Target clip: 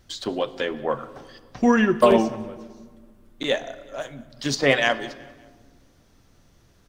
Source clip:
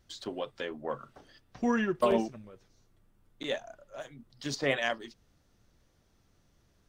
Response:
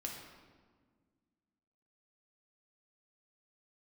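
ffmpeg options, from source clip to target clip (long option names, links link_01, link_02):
-filter_complex "[0:a]aecho=1:1:188|376|564:0.0631|0.0297|0.0139,asplit=2[link_01][link_02];[1:a]atrim=start_sample=2205,asetrate=43218,aresample=44100[link_03];[link_02][link_03]afir=irnorm=-1:irlink=0,volume=-9.5dB[link_04];[link_01][link_04]amix=inputs=2:normalize=0,volume=8.5dB"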